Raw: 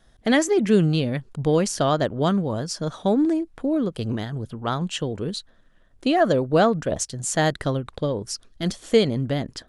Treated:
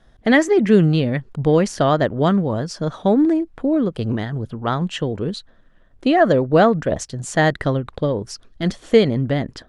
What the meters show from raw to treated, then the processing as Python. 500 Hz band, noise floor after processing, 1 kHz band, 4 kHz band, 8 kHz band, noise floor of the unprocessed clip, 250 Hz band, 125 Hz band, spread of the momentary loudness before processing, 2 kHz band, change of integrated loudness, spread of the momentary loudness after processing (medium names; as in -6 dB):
+4.5 dB, -52 dBFS, +4.0 dB, 0.0 dB, -4.5 dB, -56 dBFS, +4.5 dB, +4.5 dB, 10 LU, +6.0 dB, +4.0 dB, 10 LU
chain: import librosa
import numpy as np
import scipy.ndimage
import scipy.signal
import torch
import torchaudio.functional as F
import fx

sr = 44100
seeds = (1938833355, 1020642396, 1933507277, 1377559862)

y = fx.lowpass(x, sr, hz=2600.0, slope=6)
y = fx.dynamic_eq(y, sr, hz=1900.0, q=4.4, threshold_db=-49.0, ratio=4.0, max_db=5)
y = y * 10.0 ** (4.5 / 20.0)